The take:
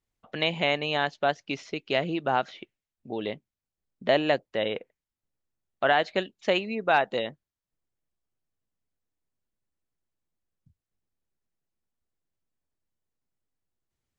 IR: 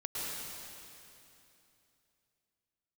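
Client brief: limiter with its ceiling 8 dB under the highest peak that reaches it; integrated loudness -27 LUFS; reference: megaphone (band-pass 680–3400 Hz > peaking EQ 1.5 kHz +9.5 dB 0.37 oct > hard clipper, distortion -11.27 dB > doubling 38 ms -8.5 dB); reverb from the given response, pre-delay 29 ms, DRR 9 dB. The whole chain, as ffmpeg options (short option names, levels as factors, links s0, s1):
-filter_complex "[0:a]alimiter=limit=0.141:level=0:latency=1,asplit=2[s0][s1];[1:a]atrim=start_sample=2205,adelay=29[s2];[s1][s2]afir=irnorm=-1:irlink=0,volume=0.224[s3];[s0][s3]amix=inputs=2:normalize=0,highpass=680,lowpass=3400,equalizer=f=1500:t=o:w=0.37:g=9.5,asoftclip=type=hard:threshold=0.0562,asplit=2[s4][s5];[s5]adelay=38,volume=0.376[s6];[s4][s6]amix=inputs=2:normalize=0,volume=2.11"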